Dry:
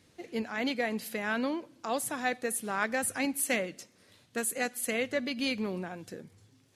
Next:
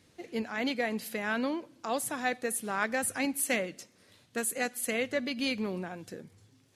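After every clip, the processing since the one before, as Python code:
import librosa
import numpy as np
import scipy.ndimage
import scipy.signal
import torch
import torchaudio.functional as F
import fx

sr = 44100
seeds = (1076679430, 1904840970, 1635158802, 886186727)

y = x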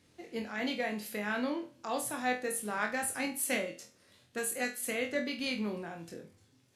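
y = fx.room_flutter(x, sr, wall_m=4.1, rt60_s=0.29)
y = y * librosa.db_to_amplitude(-4.0)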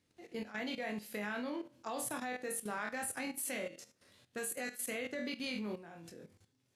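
y = fx.level_steps(x, sr, step_db=13)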